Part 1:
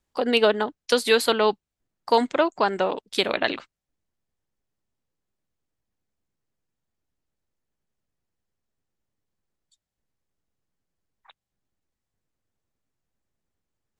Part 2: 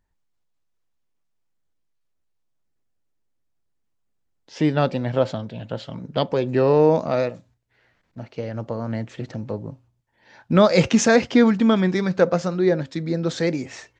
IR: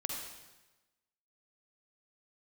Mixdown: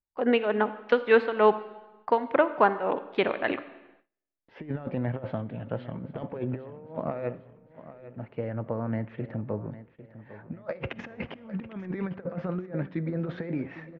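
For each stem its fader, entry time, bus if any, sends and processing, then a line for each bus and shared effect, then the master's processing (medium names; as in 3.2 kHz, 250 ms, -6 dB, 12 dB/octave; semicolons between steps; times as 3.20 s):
-0.5 dB, 0.00 s, send -10 dB, no echo send, tremolo 3.4 Hz, depth 81%
-9.0 dB, 0.00 s, send -18 dB, echo send -14 dB, compressor with a negative ratio -24 dBFS, ratio -0.5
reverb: on, RT60 1.1 s, pre-delay 43 ms
echo: feedback delay 803 ms, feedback 40%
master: gate with hold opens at -47 dBFS; low-pass 2.3 kHz 24 dB/octave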